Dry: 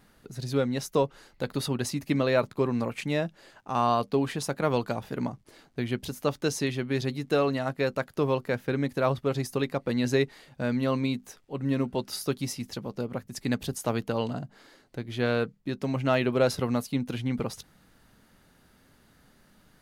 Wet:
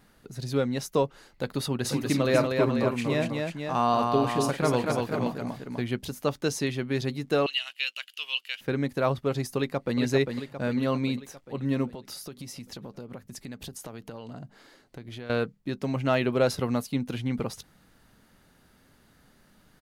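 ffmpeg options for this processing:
-filter_complex "[0:a]asplit=3[s0][s1][s2];[s0]afade=t=out:st=1.84:d=0.02[s3];[s1]aecho=1:1:46|240|491:0.251|0.668|0.447,afade=t=in:st=1.84:d=0.02,afade=t=out:st=5.81:d=0.02[s4];[s2]afade=t=in:st=5.81:d=0.02[s5];[s3][s4][s5]amix=inputs=3:normalize=0,asettb=1/sr,asplit=3[s6][s7][s8];[s6]atrim=end=7.464[s9];[s7]atrim=start=7.46:end=8.61,asetpts=PTS-STARTPTS,afade=t=in:d=0.004:c=qsin,afade=t=out:st=1.146:d=0.004:c=qsin,highpass=f=2900:t=q:w=12[s10];[s8]atrim=start=8.606[s11];[s9][s10]acrossfade=d=0.004:c1=hsin:c2=qsin[s12];[s12][s11]acrossfade=d=0.004:c1=qsin:c2=hsin,asplit=2[s13][s14];[s14]afade=t=in:st=9.57:d=0.01,afade=t=out:st=9.99:d=0.01,aecho=0:1:400|800|1200|1600|2000|2400|2800|3200:0.530884|0.318531|0.191118|0.114671|0.0688026|0.0412816|0.0247689|0.0148614[s15];[s13][s15]amix=inputs=2:normalize=0,asettb=1/sr,asplit=3[s16][s17][s18];[s16]atrim=end=11.944[s19];[s17]atrim=start=11.94:end=15.3,asetpts=PTS-STARTPTS,afade=t=in:d=0.004:c=qsin,afade=t=out:st=3.356:d=0.004:c=qsin,acompressor=threshold=0.0158:ratio=8:attack=3.2:release=140:knee=1:detection=peak[s20];[s18]atrim=start=15.296[s21];[s19][s20]acrossfade=d=0.004:c1=hsin:c2=qsin[s22];[s22][s21]acrossfade=d=0.004:c1=qsin:c2=hsin"

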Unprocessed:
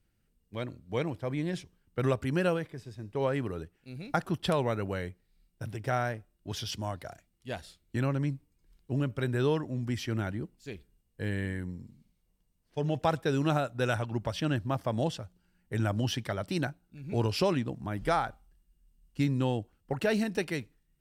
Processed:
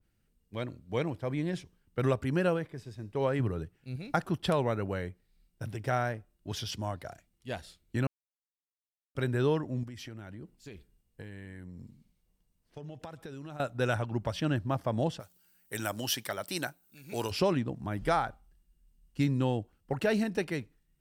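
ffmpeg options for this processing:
-filter_complex "[0:a]asettb=1/sr,asplit=3[s0][s1][s2];[s0]atrim=end=3.394[s3];[s1]atrim=start=3.39:end=3.96,asetpts=PTS-STARTPTS,afade=t=in:d=0.004:c=qsin,afade=t=out:st=0.566:d=0.004:c=qsin,equalizer=f=120:w=1.5:g=8.5[s4];[s2]atrim=start=3.956[s5];[s3][s4]acrossfade=d=0.004:c1=hsin:c2=qsin[s6];[s6][s5]acrossfade=d=0.004:c1=qsin:c2=hsin,asettb=1/sr,asplit=3[s7][s8][s9];[s7]atrim=end=9.834[s10];[s8]atrim=start=9.83:end=13.6,asetpts=PTS-STARTPTS,afade=t=in:d=0.004:c=qsin,afade=t=out:st=3.766:d=0.004:c=qsin,acompressor=threshold=0.01:ratio=10:attack=3.2:release=140:knee=1:detection=peak[s11];[s9]atrim=start=13.596[s12];[s10][s11]acrossfade=d=0.004:c1=hsin:c2=qsin[s13];[s13][s12]acrossfade=d=0.004:c1=qsin:c2=hsin,asplit=3[s14][s15][s16];[s14]afade=t=out:st=15.19:d=0.02[s17];[s15]aemphasis=mode=production:type=riaa,afade=t=in:st=15.19:d=0.02,afade=t=out:st=17.3:d=0.02[s18];[s16]afade=t=in:st=17.3:d=0.02[s19];[s17][s18][s19]amix=inputs=3:normalize=0,asplit=3[s20][s21][s22];[s20]atrim=end=8.07,asetpts=PTS-STARTPTS,afade=t=out:st=8.066:d=0.004:c=hsin[s23];[s21]atrim=start=8.07:end=9.15,asetpts=PTS-STARTPTS,volume=0[s24];[s22]atrim=start=9.15,asetpts=PTS-STARTPTS,afade=t=in:d=0.004:c=hsin[s25];[s23][s24][s25]concat=n=3:v=0:a=1,adynamicequalizer=threshold=0.00562:dfrequency=2100:dqfactor=0.7:tfrequency=2100:tqfactor=0.7:attack=5:release=100:ratio=0.375:range=3:mode=cutabove:tftype=highshelf"

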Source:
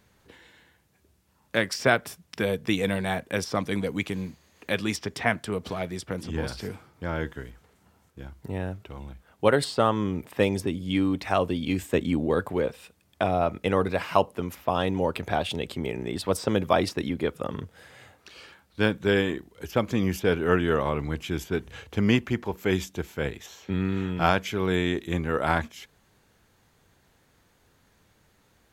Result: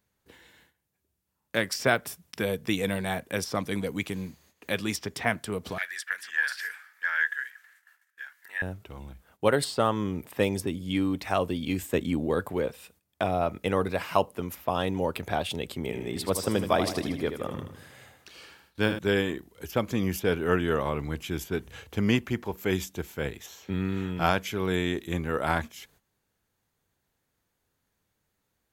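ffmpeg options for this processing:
-filter_complex "[0:a]asettb=1/sr,asplit=3[s0][s1][s2];[s0]atrim=end=5.784[s3];[s1]atrim=start=5.78:end=8.62,asetpts=PTS-STARTPTS,afade=t=in:d=0.004:c=qsin,afade=t=out:st=2.836:d=0.004:c=qsin,highpass=f=1700:t=q:w=13[s4];[s2]atrim=start=8.616[s5];[s3][s4]acrossfade=d=0.004:c1=hsin:c2=qsin[s6];[s6][s5]acrossfade=d=0.004:c1=qsin:c2=hsin,asettb=1/sr,asplit=3[s7][s8][s9];[s7]atrim=end=15.814[s10];[s8]atrim=start=15.81:end=18.99,asetpts=PTS-STARTPTS,afade=t=in:d=0.004:c=qsin,afade=t=out:st=3.176:d=0.004:c=qsin,aecho=1:1:78|156|234|312|390|468:0.376|0.199|0.106|0.056|0.0297|0.0157,atrim=end_sample=140238[s11];[s9]atrim=start=18.986[s12];[s10][s11]acrossfade=d=0.004:c1=hsin:c2=qsin[s13];[s13][s12]acrossfade=d=0.004:c1=qsin:c2=hsin,agate=range=0.224:threshold=0.00126:ratio=16:detection=peak,highshelf=f=9800:g=11,volume=0.75"

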